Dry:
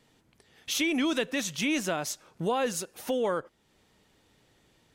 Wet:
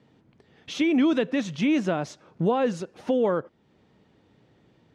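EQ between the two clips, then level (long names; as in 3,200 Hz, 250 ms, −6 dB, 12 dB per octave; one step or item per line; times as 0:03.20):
band-pass filter 130–5,600 Hz
spectral tilt −3 dB per octave
+2.0 dB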